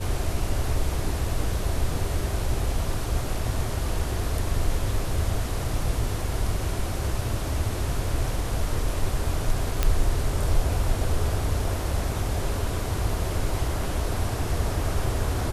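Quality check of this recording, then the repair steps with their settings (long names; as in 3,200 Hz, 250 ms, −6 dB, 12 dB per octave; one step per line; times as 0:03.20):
0:09.83: click −7 dBFS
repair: click removal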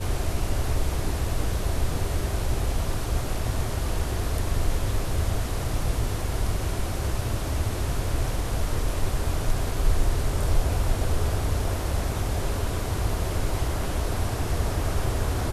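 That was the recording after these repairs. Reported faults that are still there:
none of them is left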